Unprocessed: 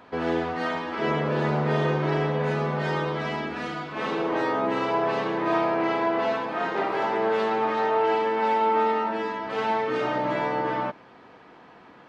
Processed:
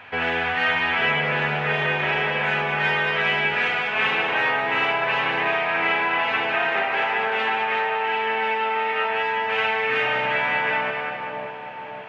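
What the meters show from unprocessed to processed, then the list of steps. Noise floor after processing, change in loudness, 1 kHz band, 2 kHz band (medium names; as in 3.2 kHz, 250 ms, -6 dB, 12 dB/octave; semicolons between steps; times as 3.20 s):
-34 dBFS, +4.0 dB, +2.0 dB, +12.0 dB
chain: graphic EQ with 31 bands 100 Hz +10 dB, 200 Hz -4 dB, 315 Hz -12 dB, 800 Hz +8 dB, 1.25 kHz -8 dB, 2.5 kHz +6 dB; on a send: two-band feedback delay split 990 Hz, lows 552 ms, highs 198 ms, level -6.5 dB; on the sum: compression, threshold -23 dBFS, peak gain reduction 7.5 dB; high-order bell 2 kHz +13 dB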